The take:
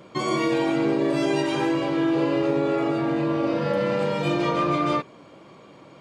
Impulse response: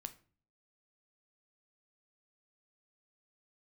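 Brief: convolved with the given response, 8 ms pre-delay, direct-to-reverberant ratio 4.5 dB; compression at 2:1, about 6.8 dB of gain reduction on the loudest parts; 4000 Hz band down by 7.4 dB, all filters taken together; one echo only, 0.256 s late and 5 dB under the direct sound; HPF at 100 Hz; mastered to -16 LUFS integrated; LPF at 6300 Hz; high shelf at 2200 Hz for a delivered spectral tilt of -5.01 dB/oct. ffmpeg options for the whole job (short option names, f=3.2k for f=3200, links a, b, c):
-filter_complex "[0:a]highpass=100,lowpass=6.3k,highshelf=f=2.2k:g=-5.5,equalizer=f=4k:t=o:g=-4.5,acompressor=threshold=-32dB:ratio=2,aecho=1:1:256:0.562,asplit=2[a][b];[1:a]atrim=start_sample=2205,adelay=8[c];[b][c]afir=irnorm=-1:irlink=0,volume=-0.5dB[d];[a][d]amix=inputs=2:normalize=0,volume=13dB"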